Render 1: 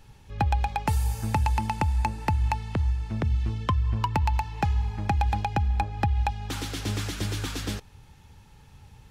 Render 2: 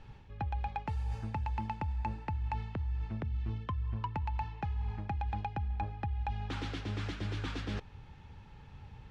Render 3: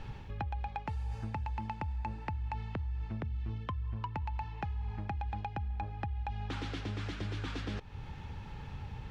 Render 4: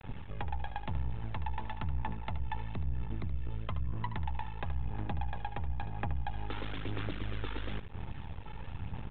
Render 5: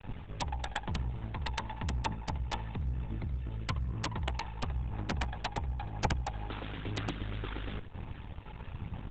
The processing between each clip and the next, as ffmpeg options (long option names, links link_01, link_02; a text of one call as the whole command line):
ffmpeg -i in.wav -af "areverse,acompressor=threshold=-33dB:ratio=6,areverse,lowpass=3100" out.wav
ffmpeg -i in.wav -af "acompressor=threshold=-47dB:ratio=3,volume=9dB" out.wav
ffmpeg -i in.wav -af "aresample=8000,aeval=exprs='max(val(0),0)':channel_layout=same,aresample=44100,aphaser=in_gain=1:out_gain=1:delay=2.3:decay=0.35:speed=1:type=sinusoidal,aecho=1:1:74:0.266,volume=2.5dB" out.wav
ffmpeg -i in.wav -af "aeval=exprs='(mod(14.1*val(0)+1,2)-1)/14.1':channel_layout=same,volume=1.5dB" -ar 48000 -c:a libopus -b:a 10k out.opus